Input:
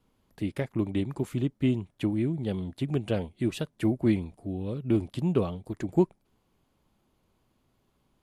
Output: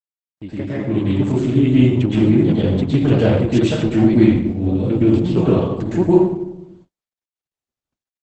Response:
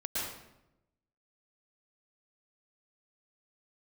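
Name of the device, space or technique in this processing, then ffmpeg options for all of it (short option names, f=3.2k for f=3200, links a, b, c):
speakerphone in a meeting room: -filter_complex "[1:a]atrim=start_sample=2205[a];[0:a][a]afir=irnorm=-1:irlink=0,asplit=2[b][c];[c]adelay=90,highpass=300,lowpass=3.4k,asoftclip=type=hard:threshold=-16.5dB,volume=-18dB[d];[b][d]amix=inputs=2:normalize=0,dynaudnorm=f=660:g=3:m=16dB,agate=range=-49dB:threshold=-45dB:ratio=16:detection=peak" -ar 48000 -c:a libopus -b:a 12k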